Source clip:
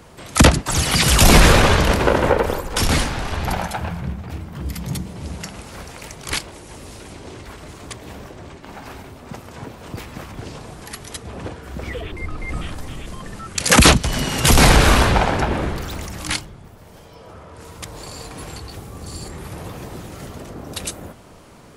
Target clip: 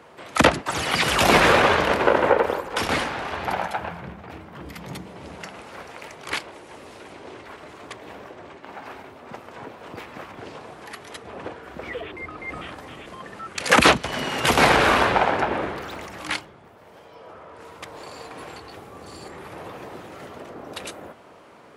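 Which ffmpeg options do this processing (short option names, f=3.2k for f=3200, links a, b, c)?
-af "highpass=79,bass=f=250:g=-13,treble=f=4k:g=-13,asoftclip=type=hard:threshold=-3.5dB"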